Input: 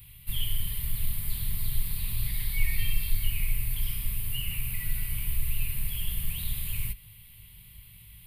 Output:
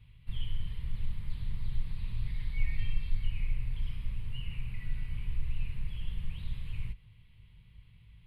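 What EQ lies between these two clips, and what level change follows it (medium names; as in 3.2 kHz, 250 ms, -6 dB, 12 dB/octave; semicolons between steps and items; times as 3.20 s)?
tape spacing loss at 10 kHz 30 dB; -3.0 dB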